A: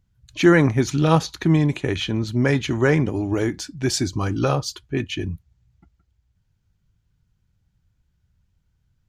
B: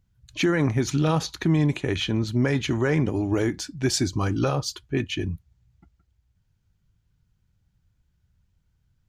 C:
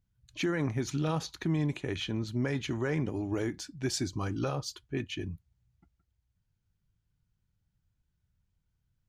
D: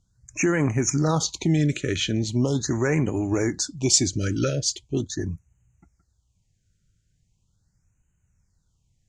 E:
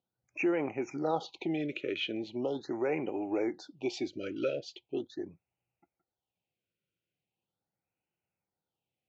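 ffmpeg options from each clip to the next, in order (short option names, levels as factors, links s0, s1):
-af "alimiter=limit=0.251:level=0:latency=1:release=71,volume=0.891"
-af "equalizer=f=67:t=o:w=0.77:g=-2.5,volume=0.376"
-af "lowpass=f=7100:t=q:w=3.7,afftfilt=real='re*(1-between(b*sr/1024,880*pow(4400/880,0.5+0.5*sin(2*PI*0.4*pts/sr))/1.41,880*pow(4400/880,0.5+0.5*sin(2*PI*0.4*pts/sr))*1.41))':imag='im*(1-between(b*sr/1024,880*pow(4400/880,0.5+0.5*sin(2*PI*0.4*pts/sr))/1.41,880*pow(4400/880,0.5+0.5*sin(2*PI*0.4*pts/sr))*1.41))':win_size=1024:overlap=0.75,volume=2.66"
-af "highpass=350,equalizer=f=350:t=q:w=4:g=5,equalizer=f=520:t=q:w=4:g=5,equalizer=f=780:t=q:w=4:g=8,equalizer=f=1100:t=q:w=4:g=-6,equalizer=f=1700:t=q:w=4:g=-10,equalizer=f=2600:t=q:w=4:g=6,lowpass=f=3400:w=0.5412,lowpass=f=3400:w=1.3066,volume=0.398"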